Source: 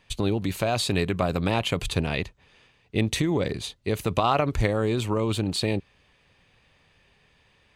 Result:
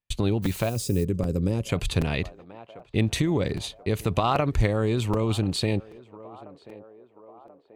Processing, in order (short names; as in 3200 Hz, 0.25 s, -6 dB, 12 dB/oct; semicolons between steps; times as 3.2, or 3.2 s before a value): gate -49 dBFS, range -37 dB; low shelf 180 Hz +5.5 dB; narrowing echo 1.034 s, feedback 60%, band-pass 650 Hz, level -20.5 dB; in parallel at -1 dB: compressor, threshold -38 dBFS, peak gain reduction 20.5 dB; 0.42–1.03 on the sum: added noise blue -42 dBFS; 0.69–1.69 spectral gain 570–4700 Hz -15 dB; crackling interface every 0.78 s, samples 256, repeat, from 0.45; gain -2.5 dB